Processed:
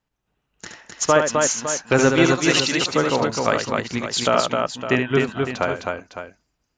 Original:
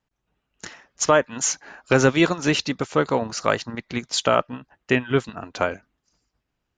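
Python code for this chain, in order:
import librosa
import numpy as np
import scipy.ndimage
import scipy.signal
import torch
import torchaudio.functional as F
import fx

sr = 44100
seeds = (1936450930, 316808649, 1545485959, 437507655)

p1 = fx.tilt_eq(x, sr, slope=2.5, at=(2.28, 2.84))
y = p1 + fx.echo_multitap(p1, sr, ms=(72, 259, 558), db=(-6.0, -3.5, -10.5), dry=0)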